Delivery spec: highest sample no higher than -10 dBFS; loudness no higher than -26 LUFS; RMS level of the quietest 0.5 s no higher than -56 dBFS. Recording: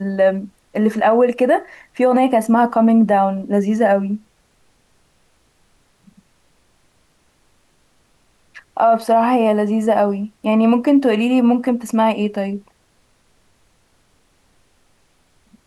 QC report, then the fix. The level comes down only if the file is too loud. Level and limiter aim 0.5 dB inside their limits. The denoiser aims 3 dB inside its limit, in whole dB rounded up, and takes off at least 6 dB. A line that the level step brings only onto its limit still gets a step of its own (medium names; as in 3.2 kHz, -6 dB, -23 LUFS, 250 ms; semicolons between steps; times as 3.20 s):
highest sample -5.5 dBFS: fail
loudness -16.5 LUFS: fail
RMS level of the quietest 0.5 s -59 dBFS: pass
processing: trim -10 dB